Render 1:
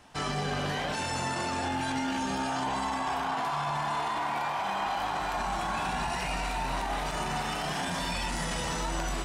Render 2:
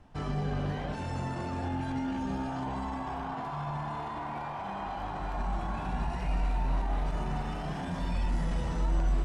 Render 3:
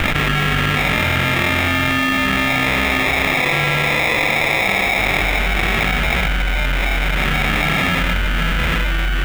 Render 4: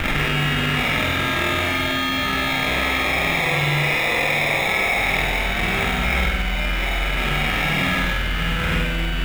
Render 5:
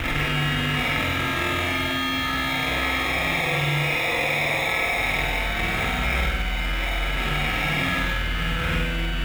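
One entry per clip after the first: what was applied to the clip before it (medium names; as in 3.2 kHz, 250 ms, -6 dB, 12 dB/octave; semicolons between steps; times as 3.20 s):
tilt EQ -3.5 dB/octave; trim -7 dB
sample-rate reducer 1.5 kHz, jitter 0%; high-order bell 2.1 kHz +15 dB; level flattener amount 100%; trim +6 dB
flutter echo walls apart 8.3 m, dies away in 0.79 s; trim -5.5 dB
comb of notches 200 Hz; trim -2 dB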